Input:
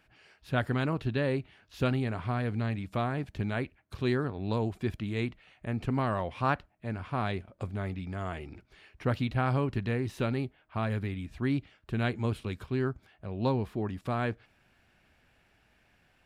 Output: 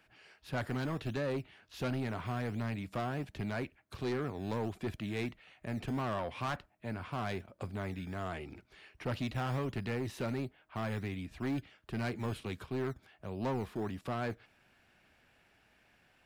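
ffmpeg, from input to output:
-filter_complex "[0:a]lowshelf=f=120:g=-8,acrossover=split=150[a][b];[a]acrusher=samples=18:mix=1:aa=0.000001:lfo=1:lforange=18:lforate=1.4[c];[c][b]amix=inputs=2:normalize=0,asoftclip=type=tanh:threshold=-29.5dB"

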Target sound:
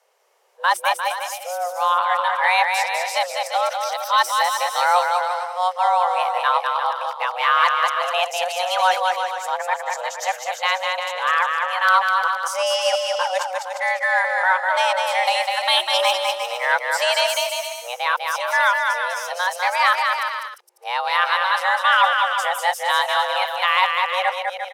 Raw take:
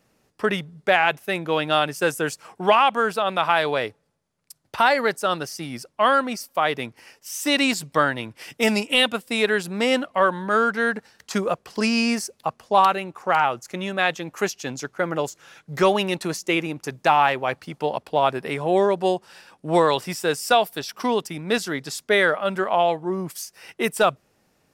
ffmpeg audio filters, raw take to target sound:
-af "areverse,aecho=1:1:200|350|462.5|546.9|610.2:0.631|0.398|0.251|0.158|0.1,afreqshift=360"

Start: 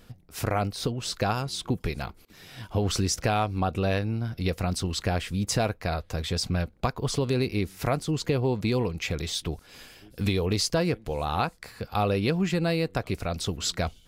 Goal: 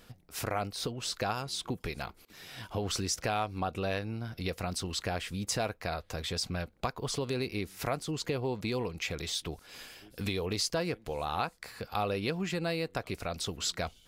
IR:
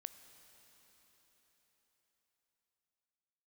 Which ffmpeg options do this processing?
-filter_complex "[0:a]lowshelf=f=300:g=-7.5,asplit=2[a][b];[b]acompressor=threshold=-37dB:ratio=6,volume=1.5dB[c];[a][c]amix=inputs=2:normalize=0,volume=-6.5dB"

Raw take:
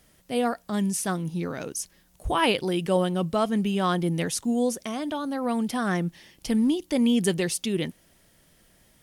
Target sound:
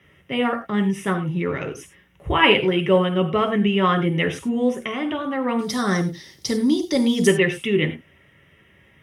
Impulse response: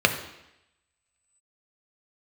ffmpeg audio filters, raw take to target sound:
-filter_complex "[0:a]asetnsamples=n=441:p=0,asendcmd='5.59 highshelf g 7.5;7.27 highshelf g -8',highshelf=f=3.5k:t=q:w=3:g=-6.5[a];[1:a]atrim=start_sample=2205,atrim=end_sample=3969,asetrate=34839,aresample=44100[b];[a][b]afir=irnorm=-1:irlink=0,volume=-12dB"

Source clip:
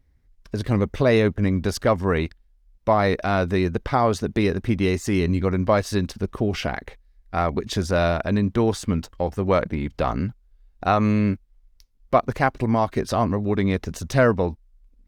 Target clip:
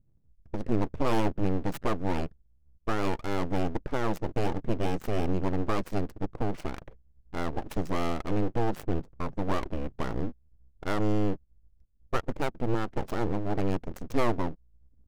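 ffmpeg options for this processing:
-af "equalizer=f=125:t=o:w=1:g=3,equalizer=f=1k:t=o:w=1:g=-10,equalizer=f=2k:t=o:w=1:g=-5,equalizer=f=4k:t=o:w=1:g=-8,equalizer=f=8k:t=o:w=1:g=11,adynamicsmooth=sensitivity=5.5:basefreq=540,aeval=exprs='abs(val(0))':c=same,volume=-4dB"

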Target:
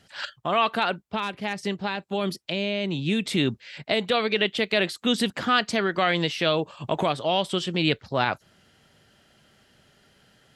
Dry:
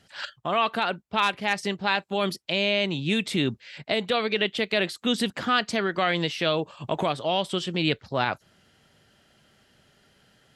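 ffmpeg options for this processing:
-filter_complex "[0:a]asettb=1/sr,asplit=3[a][b][c];[a]atrim=end=1.004[d];[b]atrim=start=1:end=3.26,asetpts=PTS-STARTPTS,afade=t=in:d=0.004:c=qsin,afade=t=out:st=2.256:d=0.004:c=qsin,acrossover=split=450[e][f];[f]acompressor=threshold=-31dB:ratio=3[g];[e][g]amix=inputs=2:normalize=0[h];[c]atrim=start=3.256[i];[d][h]acrossfade=d=0.004:c1=hsin:c2=qsin[j];[j][i]acrossfade=d=0.004:c1=qsin:c2=hsin,volume=1.5dB"

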